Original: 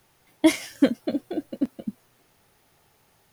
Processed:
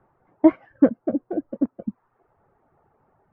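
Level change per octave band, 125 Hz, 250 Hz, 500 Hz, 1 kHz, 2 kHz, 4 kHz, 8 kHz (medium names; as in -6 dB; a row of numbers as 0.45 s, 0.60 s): +1.5 dB, +3.0 dB, +3.5 dB, +3.5 dB, no reading, under -25 dB, under -40 dB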